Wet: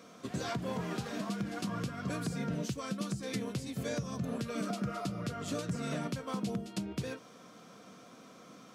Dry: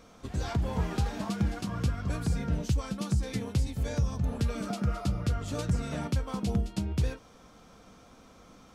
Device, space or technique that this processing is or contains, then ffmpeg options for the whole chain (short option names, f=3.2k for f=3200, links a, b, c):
PA system with an anti-feedback notch: -af "highpass=f=140:w=0.5412,highpass=f=140:w=1.3066,asuperstop=centerf=850:order=4:qfactor=6.6,alimiter=level_in=3dB:limit=-24dB:level=0:latency=1:release=196,volume=-3dB,volume=1.5dB"